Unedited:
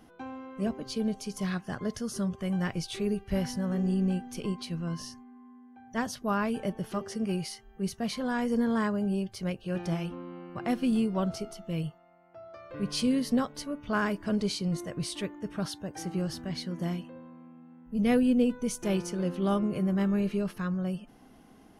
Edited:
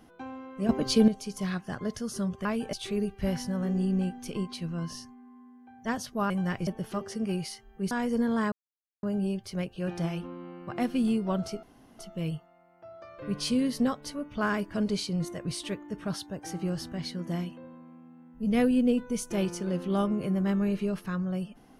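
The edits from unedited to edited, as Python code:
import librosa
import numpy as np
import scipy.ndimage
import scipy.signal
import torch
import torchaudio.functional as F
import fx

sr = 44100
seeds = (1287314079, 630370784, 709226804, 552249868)

y = fx.edit(x, sr, fx.clip_gain(start_s=0.69, length_s=0.39, db=10.0),
    fx.swap(start_s=2.45, length_s=0.37, other_s=6.39, other_length_s=0.28),
    fx.cut(start_s=7.91, length_s=0.39),
    fx.insert_silence(at_s=8.91, length_s=0.51),
    fx.insert_room_tone(at_s=11.51, length_s=0.36), tone=tone)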